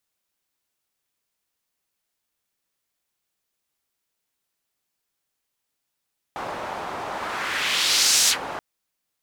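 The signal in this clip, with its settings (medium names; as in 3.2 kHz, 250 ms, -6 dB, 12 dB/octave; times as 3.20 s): whoosh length 2.23 s, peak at 1.93 s, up 1.33 s, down 0.10 s, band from 860 Hz, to 6.2 kHz, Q 1.5, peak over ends 14 dB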